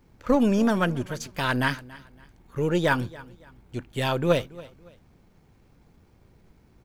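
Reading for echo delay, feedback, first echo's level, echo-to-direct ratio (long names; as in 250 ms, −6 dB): 281 ms, 32%, −20.5 dB, −20.0 dB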